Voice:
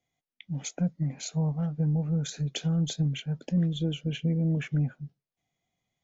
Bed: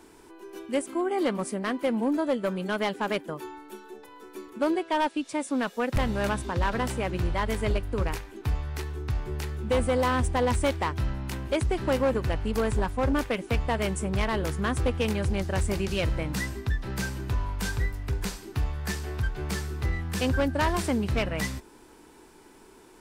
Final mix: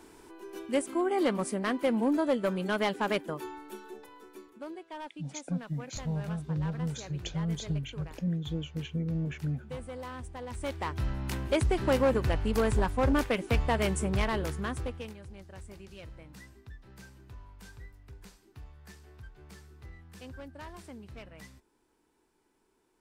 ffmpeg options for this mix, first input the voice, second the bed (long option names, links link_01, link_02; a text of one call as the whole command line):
ffmpeg -i stem1.wav -i stem2.wav -filter_complex "[0:a]adelay=4700,volume=-5.5dB[link_01];[1:a]volume=15dB,afade=type=out:start_time=3.89:duration=0.74:silence=0.16788,afade=type=in:start_time=10.49:duration=0.82:silence=0.158489,afade=type=out:start_time=14.03:duration=1.13:silence=0.105925[link_02];[link_01][link_02]amix=inputs=2:normalize=0" out.wav